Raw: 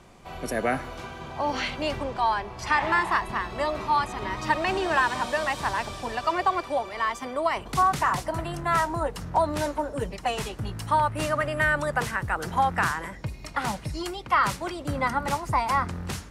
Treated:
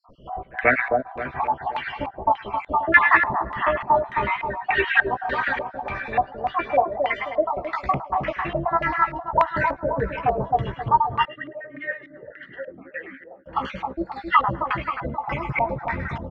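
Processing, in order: random spectral dropouts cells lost 72%; air absorption 70 m; doubler 15 ms -5 dB; split-band echo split 1700 Hz, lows 0.265 s, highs 0.106 s, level -5 dB; LFO low-pass square 1.7 Hz 740–2200 Hz; dynamic EQ 2300 Hz, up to +4 dB, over -38 dBFS, Q 0.84; 11.25–13.46 vowel sweep e-i 2.9 Hz; gain +3.5 dB

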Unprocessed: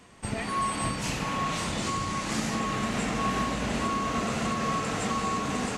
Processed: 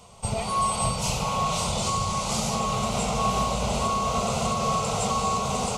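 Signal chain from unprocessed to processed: fixed phaser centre 720 Hz, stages 4; gain +7.5 dB

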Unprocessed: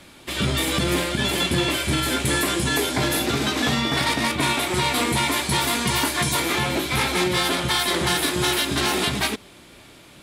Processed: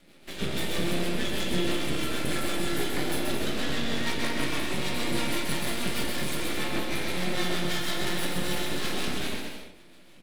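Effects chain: fifteen-band EQ 100 Hz -4 dB, 1000 Hz -6 dB, 6300 Hz -6 dB; rotary speaker horn 6.3 Hz; resonant low shelf 130 Hz -6 dB, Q 3; half-wave rectifier; bouncing-ball echo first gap 0.13 s, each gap 0.7×, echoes 5; on a send at -1.5 dB: reverb RT60 0.55 s, pre-delay 14 ms; on the sum: gain -5 dB

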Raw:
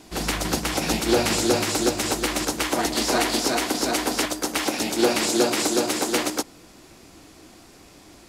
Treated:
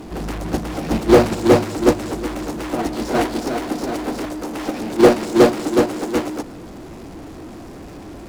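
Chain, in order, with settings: tilt shelf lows +9 dB, about 1400 Hz; power-law curve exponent 0.5; in parallel at -1 dB: limiter -11 dBFS, peak gain reduction 9.5 dB; on the sum: gate -5 dBFS, range -17 dB; gain -1.5 dB

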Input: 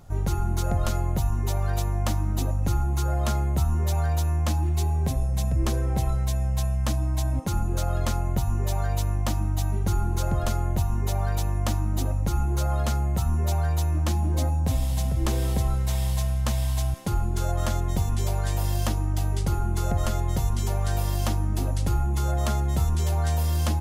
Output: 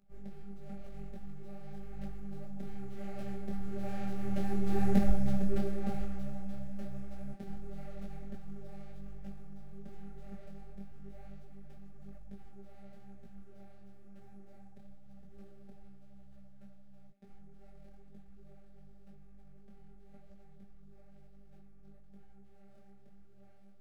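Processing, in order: median filter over 41 samples; Doppler pass-by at 4.95, 8 m/s, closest 3.1 m; robotiser 198 Hz; notch 990 Hz, Q 6.4; detuned doubles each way 34 cents; gain +8.5 dB

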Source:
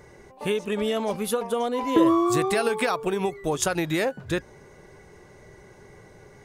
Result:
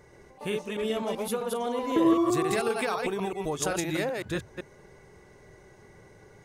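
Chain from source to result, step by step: reverse delay 0.128 s, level -3.5 dB; gain -5.5 dB

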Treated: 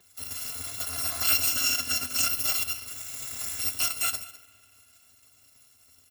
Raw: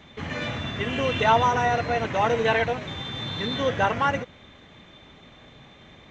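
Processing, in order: FFT order left unsorted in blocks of 256 samples; 1.47–2.3 fifteen-band EQ 250 Hz +9 dB, 630 Hz +3 dB, 1600 Hz +4 dB, 6300 Hz +5 dB; on a send: echo 0.204 s -16.5 dB; on the sum: flange 1.3 Hz, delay 9.9 ms, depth 3.2 ms, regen +65%; HPF 88 Hz 24 dB/oct; in parallel at +3 dB: compressor, threshold -36 dBFS, peak gain reduction 16 dB; on the sum: spring tank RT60 3.5 s, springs 46 ms, chirp 30 ms, DRR 13 dB; power-law curve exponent 1.4

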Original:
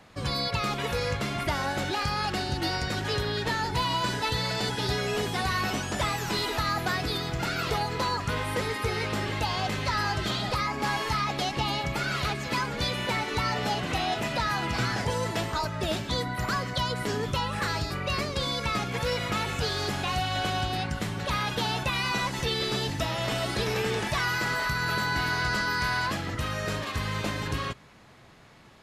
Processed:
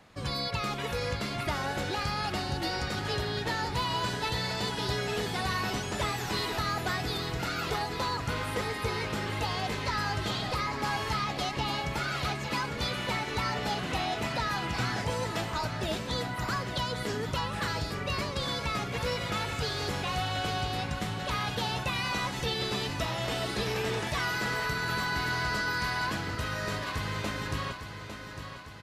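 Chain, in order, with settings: feedback echo 0.853 s, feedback 55%, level -9.5 dB; gain -3.5 dB

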